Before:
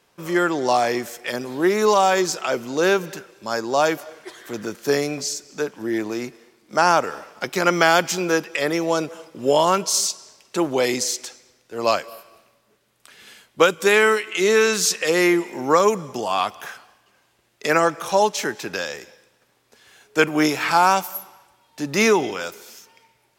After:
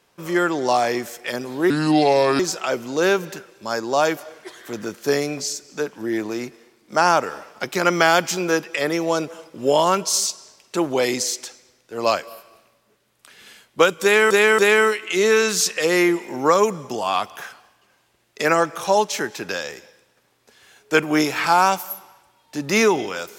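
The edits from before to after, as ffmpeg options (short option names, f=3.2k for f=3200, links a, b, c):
-filter_complex "[0:a]asplit=5[a][b][c][d][e];[a]atrim=end=1.704[f];[b]atrim=start=1.7:end=2.2,asetpts=PTS-STARTPTS,asetrate=31752,aresample=44100[g];[c]atrim=start=2.196:end=14.112[h];[d]atrim=start=13.828:end=14.112[i];[e]atrim=start=13.828[j];[f][g]acrossfade=d=0.004:c1=hsin:c2=hsin[k];[k][h]acrossfade=d=0.004:c1=hsin:c2=hsin[l];[l][i]acrossfade=d=0.004:c1=hsin:c2=hsin[m];[m][j]acrossfade=d=0.004:c1=hsin:c2=hsin"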